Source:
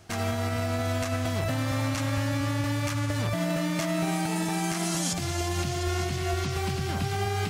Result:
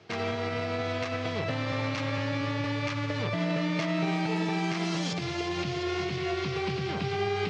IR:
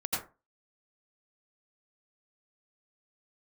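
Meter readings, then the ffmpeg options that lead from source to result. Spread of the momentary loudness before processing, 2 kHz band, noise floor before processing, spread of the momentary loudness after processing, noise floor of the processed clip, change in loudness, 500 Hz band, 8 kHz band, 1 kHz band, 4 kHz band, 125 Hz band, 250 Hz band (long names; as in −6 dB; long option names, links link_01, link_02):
2 LU, +0.5 dB, −31 dBFS, 3 LU, −33 dBFS, −2.0 dB, +0.5 dB, −13.0 dB, −1.5 dB, −1.0 dB, −4.5 dB, −1.0 dB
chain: -af "highpass=frequency=120:width=0.5412,highpass=frequency=120:width=1.3066,equalizer=frequency=250:width_type=q:width=4:gain=-5,equalizer=frequency=450:width_type=q:width=4:gain=8,equalizer=frequency=700:width_type=q:width=4:gain=-4,equalizer=frequency=1500:width_type=q:width=4:gain=-3,equalizer=frequency=2300:width_type=q:width=4:gain=3,lowpass=frequency=4800:width=0.5412,lowpass=frequency=4800:width=1.3066"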